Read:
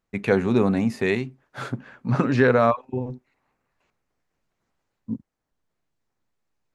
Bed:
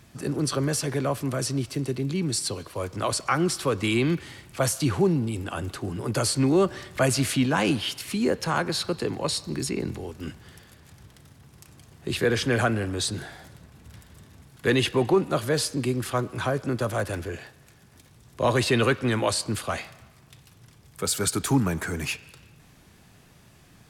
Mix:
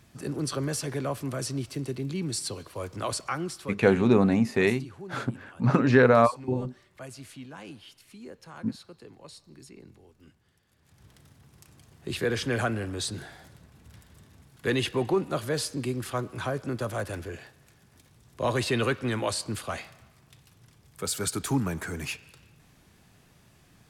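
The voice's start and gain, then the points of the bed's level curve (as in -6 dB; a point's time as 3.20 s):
3.55 s, -0.5 dB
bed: 3.15 s -4.5 dB
4.13 s -20.5 dB
10.62 s -20.5 dB
11.09 s -4.5 dB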